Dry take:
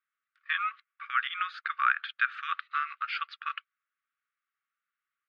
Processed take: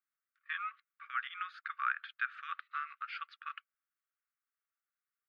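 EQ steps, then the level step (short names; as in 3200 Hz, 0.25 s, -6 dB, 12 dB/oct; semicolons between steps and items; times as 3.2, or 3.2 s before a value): HPF 1300 Hz 12 dB/oct; bell 3700 Hz -11.5 dB 2.7 oct; 0.0 dB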